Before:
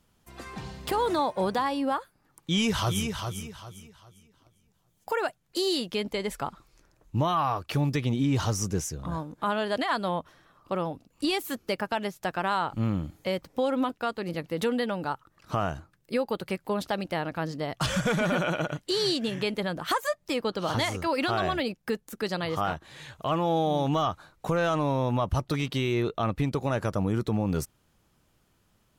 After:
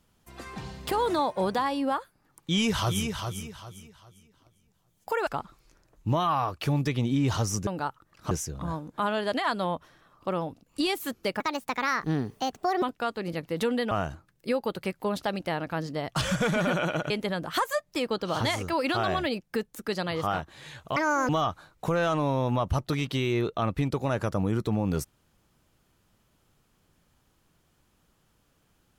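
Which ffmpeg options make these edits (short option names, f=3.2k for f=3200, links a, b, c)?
-filter_complex "[0:a]asplit=10[a][b][c][d][e][f][g][h][i][j];[a]atrim=end=5.272[k];[b]atrim=start=6.348:end=8.752[l];[c]atrim=start=14.918:end=15.562[m];[d]atrim=start=8.748:end=11.844[n];[e]atrim=start=11.84:end=13.83,asetpts=PTS-STARTPTS,asetrate=61740,aresample=44100,atrim=end_sample=62685,asetpts=PTS-STARTPTS[o];[f]atrim=start=13.826:end=14.922[p];[g]atrim=start=15.558:end=18.752[q];[h]atrim=start=19.438:end=23.304[r];[i]atrim=start=23.3:end=23.9,asetpts=PTS-STARTPTS,asetrate=80703,aresample=44100,atrim=end_sample=14459,asetpts=PTS-STARTPTS[s];[j]atrim=start=23.896[t];[k][l]acrossfade=d=0.004:c1=hsin:c2=hsin[u];[u][m]acrossfade=d=0.004:c1=hsin:c2=hsin[v];[v][n]acrossfade=d=0.004:c1=hsin:c2=hsin[w];[w][o]acrossfade=d=0.004:c1=hsin:c2=hsin[x];[x][p]acrossfade=d=0.004:c1=hsin:c2=hsin[y];[y][q]acrossfade=d=0.004:c1=hsin:c2=hsin[z];[z][r]acrossfade=d=0.004:c1=hsin:c2=hsin[aa];[aa][s]acrossfade=d=0.004:c1=hsin:c2=hsin[ab];[ab][t]acrossfade=d=0.004:c1=hsin:c2=hsin"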